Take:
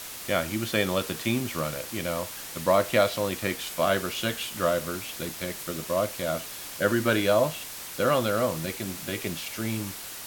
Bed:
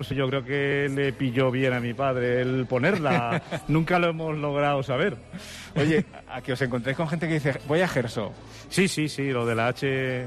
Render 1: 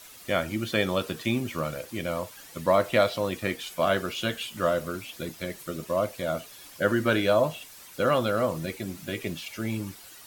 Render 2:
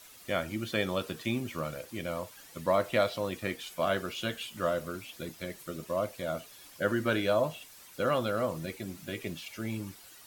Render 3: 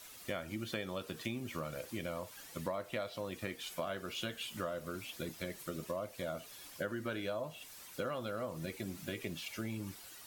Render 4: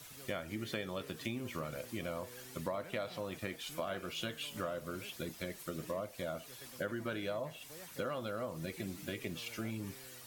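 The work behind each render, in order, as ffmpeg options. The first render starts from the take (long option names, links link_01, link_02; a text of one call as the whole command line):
ffmpeg -i in.wav -af "afftdn=noise_reduction=11:noise_floor=-39" out.wav
ffmpeg -i in.wav -af "volume=-5dB" out.wav
ffmpeg -i in.wav -af "acompressor=threshold=-36dB:ratio=6" out.wav
ffmpeg -i in.wav -i bed.wav -filter_complex "[1:a]volume=-31.5dB[link_01];[0:a][link_01]amix=inputs=2:normalize=0" out.wav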